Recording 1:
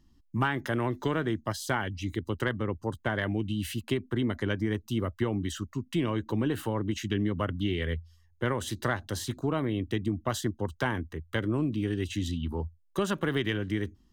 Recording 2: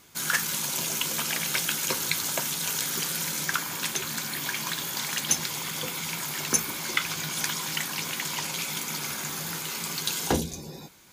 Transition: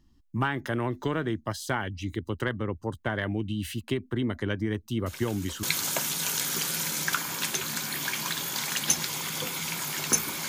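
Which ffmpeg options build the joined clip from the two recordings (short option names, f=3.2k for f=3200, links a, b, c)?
-filter_complex "[1:a]asplit=2[a][b];[0:a]apad=whole_dur=10.48,atrim=end=10.48,atrim=end=5.632[c];[b]atrim=start=2.038:end=6.89[d];[a]atrim=start=1.47:end=2.04,asetpts=PTS-STARTPTS,volume=-16.5dB,afade=t=in:d=0.004:c=hsin,afade=t=out:st=0.566:d=0.004:c=hsin,adelay=5060[e];[c][d]acrossfade=d=0.004:c1=hsin:c2=hsin[f];[f][e]amix=inputs=2:normalize=0"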